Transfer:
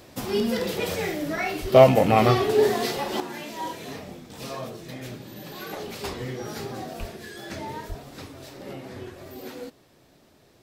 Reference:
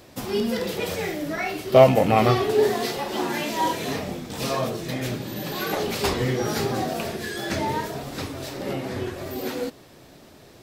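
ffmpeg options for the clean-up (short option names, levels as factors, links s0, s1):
-filter_complex "[0:a]asplit=3[s0][s1][s2];[s0]afade=t=out:st=1.61:d=0.02[s3];[s1]highpass=f=140:w=0.5412,highpass=f=140:w=1.3066,afade=t=in:st=1.61:d=0.02,afade=t=out:st=1.73:d=0.02[s4];[s2]afade=t=in:st=1.73:d=0.02[s5];[s3][s4][s5]amix=inputs=3:normalize=0,asplit=3[s6][s7][s8];[s6]afade=t=out:st=6.99:d=0.02[s9];[s7]highpass=f=140:w=0.5412,highpass=f=140:w=1.3066,afade=t=in:st=6.99:d=0.02,afade=t=out:st=7.11:d=0.02[s10];[s8]afade=t=in:st=7.11:d=0.02[s11];[s9][s10][s11]amix=inputs=3:normalize=0,asplit=3[s12][s13][s14];[s12]afade=t=out:st=7.88:d=0.02[s15];[s13]highpass=f=140:w=0.5412,highpass=f=140:w=1.3066,afade=t=in:st=7.88:d=0.02,afade=t=out:st=8:d=0.02[s16];[s14]afade=t=in:st=8:d=0.02[s17];[s15][s16][s17]amix=inputs=3:normalize=0,asetnsamples=n=441:p=0,asendcmd='3.2 volume volume 9dB',volume=1"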